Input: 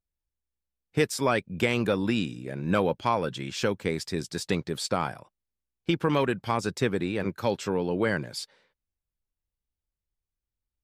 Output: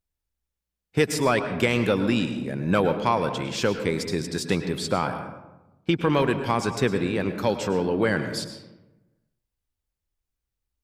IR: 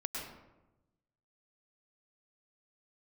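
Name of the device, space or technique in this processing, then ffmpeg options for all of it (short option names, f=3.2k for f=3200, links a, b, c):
saturated reverb return: -filter_complex "[0:a]asettb=1/sr,asplit=3[a][b][c];[a]atrim=end=4.754[d];[b]atrim=start=4.75:end=6.18,asetpts=PTS-STARTPTS,afade=t=in:d=0.004:c=qsin,afade=t=out:st=1.426:d=0.004:c=qsin,bass=f=250:g=0,treble=f=4k:g=-4[e];[c]atrim=start=6.176[f];[d][e]acrossfade=d=0.004:c1=hsin:c2=qsin[g];[g][f]acrossfade=d=0.004:c1=qsin:c2=hsin,asplit=2[h][i];[1:a]atrim=start_sample=2205[j];[i][j]afir=irnorm=-1:irlink=0,asoftclip=type=tanh:threshold=-18dB,volume=-4dB[k];[h][k]amix=inputs=2:normalize=0"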